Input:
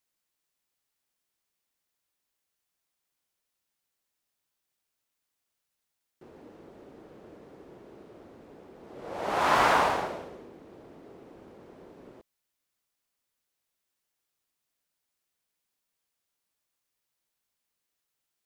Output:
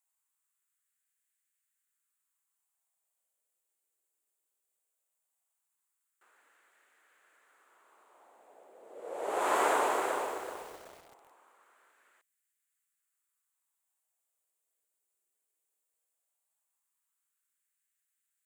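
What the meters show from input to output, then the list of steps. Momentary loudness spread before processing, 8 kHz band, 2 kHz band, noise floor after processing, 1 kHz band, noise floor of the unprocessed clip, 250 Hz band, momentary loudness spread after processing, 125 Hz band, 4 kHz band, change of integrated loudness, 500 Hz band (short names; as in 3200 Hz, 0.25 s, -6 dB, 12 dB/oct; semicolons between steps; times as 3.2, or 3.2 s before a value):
22 LU, +1.5 dB, -6.5 dB, -84 dBFS, -5.0 dB, -84 dBFS, -6.0 dB, 21 LU, under -20 dB, -8.5 dB, -5.5 dB, -2.0 dB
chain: resonant high shelf 6400 Hz +6.5 dB, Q 3; LFO high-pass sine 0.18 Hz 390–1700 Hz; lo-fi delay 0.379 s, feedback 35%, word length 7-bit, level -5 dB; gain -7.5 dB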